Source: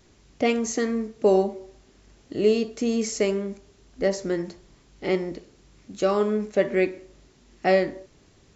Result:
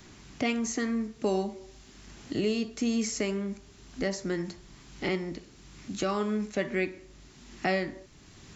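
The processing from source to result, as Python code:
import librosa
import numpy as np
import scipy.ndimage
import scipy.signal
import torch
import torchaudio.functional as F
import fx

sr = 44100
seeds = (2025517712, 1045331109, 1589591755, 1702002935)

y = fx.recorder_agc(x, sr, target_db=-14.0, rise_db_per_s=5.2, max_gain_db=30)
y = fx.peak_eq(y, sr, hz=500.0, db=-9.5, octaves=1.1)
y = fx.band_squash(y, sr, depth_pct=40)
y = F.gain(torch.from_numpy(y), -2.0).numpy()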